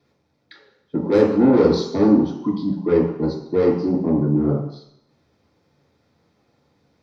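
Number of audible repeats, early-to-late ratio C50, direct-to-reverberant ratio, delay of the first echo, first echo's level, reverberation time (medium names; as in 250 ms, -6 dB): no echo, 5.0 dB, -4.0 dB, no echo, no echo, 0.70 s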